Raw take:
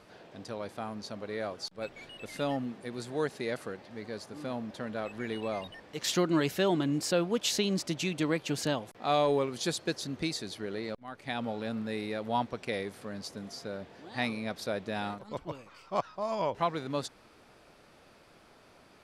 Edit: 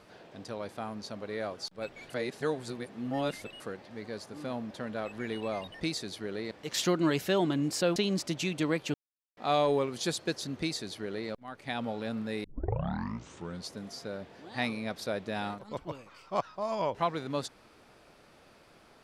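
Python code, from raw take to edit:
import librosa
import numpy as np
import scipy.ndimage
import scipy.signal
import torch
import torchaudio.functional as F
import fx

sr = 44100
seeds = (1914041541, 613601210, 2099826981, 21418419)

y = fx.edit(x, sr, fx.reverse_span(start_s=2.1, length_s=1.5),
    fx.cut(start_s=7.26, length_s=0.3),
    fx.silence(start_s=8.54, length_s=0.43),
    fx.duplicate(start_s=10.2, length_s=0.7, to_s=5.81),
    fx.tape_start(start_s=12.04, length_s=1.26), tone=tone)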